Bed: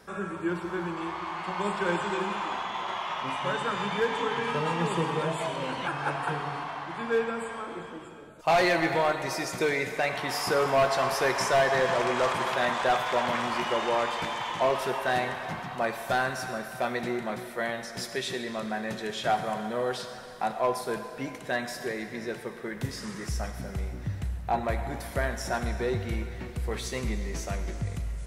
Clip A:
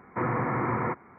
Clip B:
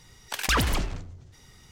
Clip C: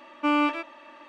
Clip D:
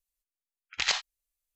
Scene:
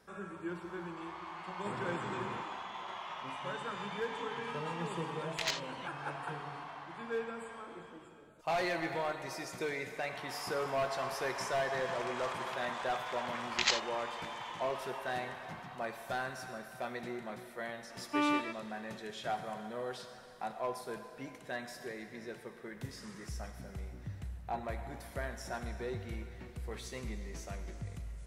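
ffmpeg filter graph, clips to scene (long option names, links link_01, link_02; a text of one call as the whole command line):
ffmpeg -i bed.wav -i cue0.wav -i cue1.wav -i cue2.wav -i cue3.wav -filter_complex "[4:a]asplit=2[link_01][link_02];[0:a]volume=-10.5dB[link_03];[link_01]volume=16.5dB,asoftclip=hard,volume=-16.5dB[link_04];[1:a]atrim=end=1.18,asetpts=PTS-STARTPTS,volume=-15dB,afade=type=in:duration=0.004:curve=hsin,afade=type=out:start_time=1.176:duration=0.004:curve=hsin,adelay=1490[link_05];[link_04]atrim=end=1.55,asetpts=PTS-STARTPTS,volume=-7.5dB,afade=type=in:duration=0.004:curve=hsin,afade=type=out:start_time=1.546:duration=0.004:curve=hsin,adelay=4590[link_06];[link_02]atrim=end=1.55,asetpts=PTS-STARTPTS,volume=-3dB,afade=type=in:duration=0.004:curve=hsin,afade=type=out:start_time=1.546:duration=0.004:curve=hsin,adelay=12790[link_07];[3:a]atrim=end=1.08,asetpts=PTS-STARTPTS,volume=-8dB,afade=type=in:duration=0.004:curve=hsin,afade=type=out:start_time=1.076:duration=0.004:curve=hsin,adelay=17900[link_08];[link_03][link_05][link_06][link_07][link_08]amix=inputs=5:normalize=0" out.wav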